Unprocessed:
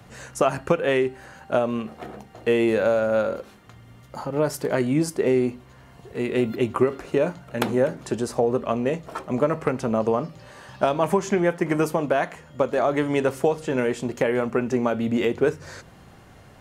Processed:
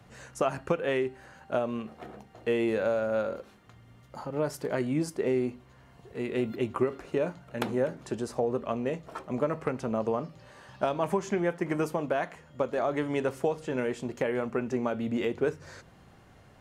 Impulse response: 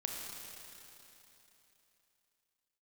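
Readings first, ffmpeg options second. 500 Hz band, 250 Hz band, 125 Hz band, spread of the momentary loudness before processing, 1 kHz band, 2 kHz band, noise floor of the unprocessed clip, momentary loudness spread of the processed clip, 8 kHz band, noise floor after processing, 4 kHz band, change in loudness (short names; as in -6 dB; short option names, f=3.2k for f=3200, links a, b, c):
-7.0 dB, -7.0 dB, -7.0 dB, 10 LU, -7.0 dB, -7.0 dB, -49 dBFS, 10 LU, -9.0 dB, -56 dBFS, -7.5 dB, -7.0 dB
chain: -af "highshelf=f=8.2k:g=-4.5,volume=-7dB"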